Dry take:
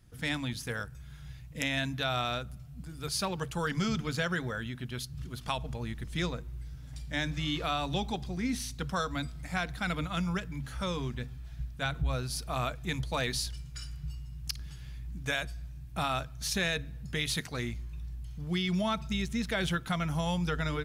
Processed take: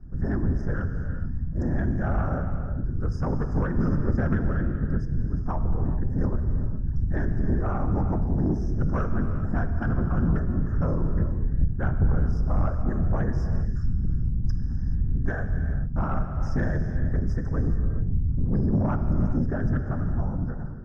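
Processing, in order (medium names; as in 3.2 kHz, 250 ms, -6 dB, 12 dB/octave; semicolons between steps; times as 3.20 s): fade out at the end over 1.80 s; in parallel at -3 dB: compression, threshold -40 dBFS, peak gain reduction 13.5 dB; on the sum: FFT band-reject 1.8–4.9 kHz; whisper effect; RIAA curve playback; saturation -17 dBFS, distortion -13 dB; distance through air 160 m; gated-style reverb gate 460 ms flat, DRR 6 dB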